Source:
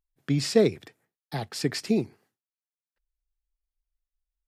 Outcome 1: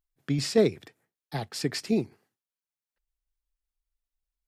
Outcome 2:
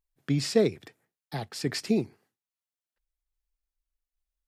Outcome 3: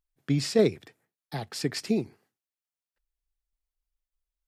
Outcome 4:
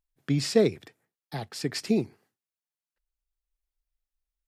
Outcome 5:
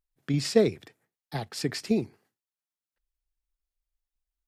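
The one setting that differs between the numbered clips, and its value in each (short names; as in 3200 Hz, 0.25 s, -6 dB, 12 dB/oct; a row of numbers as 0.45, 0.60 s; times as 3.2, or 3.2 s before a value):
tremolo, rate: 5.2, 1.2, 3.4, 0.57, 8.9 Hz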